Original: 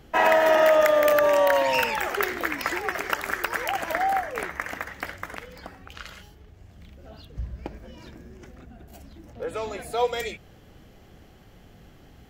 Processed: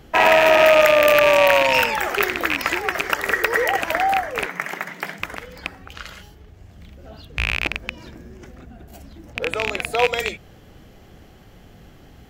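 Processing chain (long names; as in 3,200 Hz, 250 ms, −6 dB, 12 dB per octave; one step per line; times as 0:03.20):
loose part that buzzes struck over −38 dBFS, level −11 dBFS
0:03.18–0:03.79: hollow resonant body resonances 460/1,900 Hz, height 12 dB → 16 dB
0:04.46–0:05.20: frequency shifter +110 Hz
level +4.5 dB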